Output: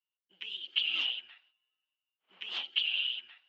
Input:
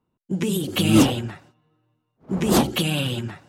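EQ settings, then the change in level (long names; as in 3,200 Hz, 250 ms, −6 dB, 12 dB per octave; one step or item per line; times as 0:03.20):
high-pass with resonance 3,000 Hz, resonance Q 7.5
high-frequency loss of the air 190 metres
head-to-tape spacing loss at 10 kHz 30 dB
−3.5 dB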